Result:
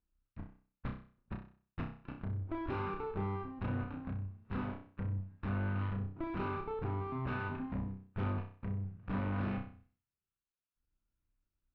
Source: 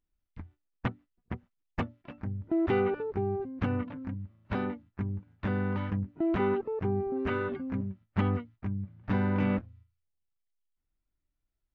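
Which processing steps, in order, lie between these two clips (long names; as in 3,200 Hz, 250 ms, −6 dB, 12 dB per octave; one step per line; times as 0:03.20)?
lower of the sound and its delayed copy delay 0.75 ms
in parallel at 0 dB: downward compressor, threshold −40 dBFS, peak gain reduction 16 dB
on the sum: tube saturation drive 32 dB, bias 0.7
high-frequency loss of the air 380 metres
flutter between parallel walls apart 5.4 metres, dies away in 0.43 s
level −2 dB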